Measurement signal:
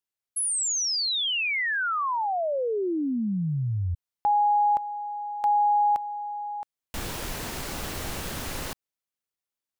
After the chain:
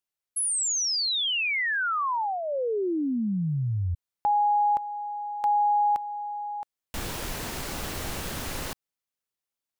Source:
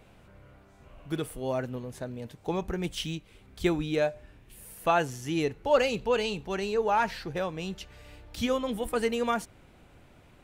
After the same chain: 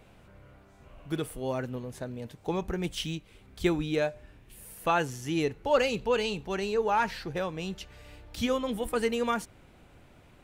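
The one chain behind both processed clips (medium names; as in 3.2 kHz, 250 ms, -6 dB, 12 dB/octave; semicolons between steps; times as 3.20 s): dynamic bell 670 Hz, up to -5 dB, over -39 dBFS, Q 4.6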